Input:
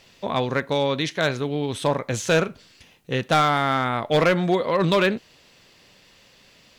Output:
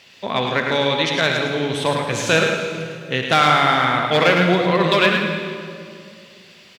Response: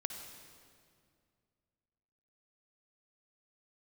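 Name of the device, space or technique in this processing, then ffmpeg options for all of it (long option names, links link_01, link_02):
PA in a hall: -filter_complex "[0:a]highpass=100,equalizer=frequency=2600:width_type=o:width=1.9:gain=7,aecho=1:1:107:0.531[link_01];[1:a]atrim=start_sample=2205[link_02];[link_01][link_02]afir=irnorm=-1:irlink=0,volume=1.5dB"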